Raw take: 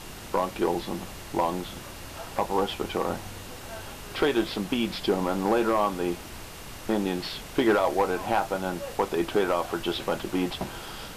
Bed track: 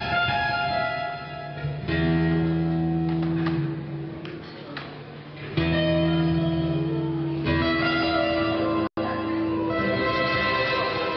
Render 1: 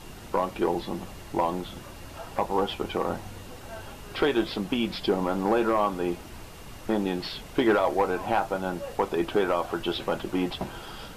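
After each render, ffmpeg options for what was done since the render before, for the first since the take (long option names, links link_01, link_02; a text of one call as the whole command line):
ffmpeg -i in.wav -af "afftdn=noise_reduction=6:noise_floor=-42" out.wav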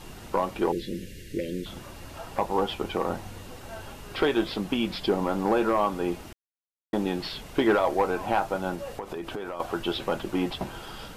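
ffmpeg -i in.wav -filter_complex "[0:a]asettb=1/sr,asplit=3[link_01][link_02][link_03];[link_01]atrim=end=0.724[link_04];[link_02]atrim=start=0.72:end=1.66,asetpts=PTS-STARTPTS,afade=type=in:duration=0.004:curve=qsin,afade=type=out:start_time=0.936:duration=0.004:curve=qsin,asuperstop=centerf=930:order=12:qfactor=0.84[link_05];[link_03]atrim=start=1.656[link_06];[link_04][link_05]acrossfade=duration=0.004:curve1=hsin:curve2=qsin[link_07];[link_07][link_06]acrossfade=duration=0.004:curve1=qsin:curve2=hsin,asettb=1/sr,asplit=3[link_08][link_09][link_10];[link_08]atrim=end=8.754[link_11];[link_09]atrim=start=8.75:end=9.6,asetpts=PTS-STARTPTS,afade=type=in:duration=0.004:curve=qsin,afade=type=out:start_time=0.846:duration=0.004:curve=qsin,acompressor=threshold=-30dB:ratio=12:attack=3.2:release=140:knee=1:detection=peak[link_12];[link_10]atrim=start=9.596[link_13];[link_11][link_12]acrossfade=duration=0.004:curve1=hsin:curve2=qsin[link_14];[link_14][link_13]acrossfade=duration=0.004:curve1=qsin:curve2=hsin,asplit=3[link_15][link_16][link_17];[link_15]atrim=end=6.33,asetpts=PTS-STARTPTS,afade=type=out:start_time=6.326:duration=0.004:curve=hsin[link_18];[link_16]atrim=start=6.33:end=6.93,asetpts=PTS-STARTPTS,volume=0[link_19];[link_17]atrim=start=6.93,asetpts=PTS-STARTPTS,afade=type=in:duration=0.004:curve=hsin[link_20];[link_18][link_19][link_20]concat=n=3:v=0:a=1" out.wav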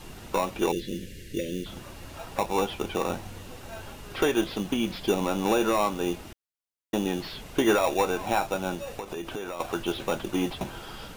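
ffmpeg -i in.wav -filter_complex "[0:a]acrossover=split=770|2600[link_01][link_02][link_03];[link_01]acrusher=samples=14:mix=1:aa=0.000001[link_04];[link_03]asoftclip=type=tanh:threshold=-40dB[link_05];[link_04][link_02][link_05]amix=inputs=3:normalize=0" out.wav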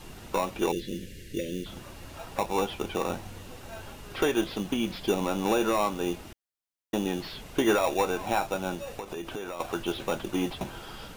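ffmpeg -i in.wav -af "volume=-1.5dB" out.wav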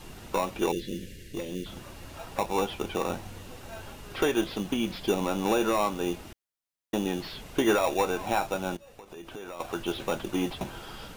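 ffmpeg -i in.wav -filter_complex "[0:a]asplit=3[link_01][link_02][link_03];[link_01]afade=type=out:start_time=1.14:duration=0.02[link_04];[link_02]aeval=exprs='(tanh(22.4*val(0)+0.35)-tanh(0.35))/22.4':channel_layout=same,afade=type=in:start_time=1.14:duration=0.02,afade=type=out:start_time=1.54:duration=0.02[link_05];[link_03]afade=type=in:start_time=1.54:duration=0.02[link_06];[link_04][link_05][link_06]amix=inputs=3:normalize=0,asplit=2[link_07][link_08];[link_07]atrim=end=8.77,asetpts=PTS-STARTPTS,afade=type=out:start_time=8.766:duration=0.004:curve=hsin:silence=0.141254[link_09];[link_08]atrim=start=8.77,asetpts=PTS-STARTPTS,afade=type=in:duration=1.18:silence=0.141254[link_10];[link_09][link_10]concat=n=2:v=0:a=1" out.wav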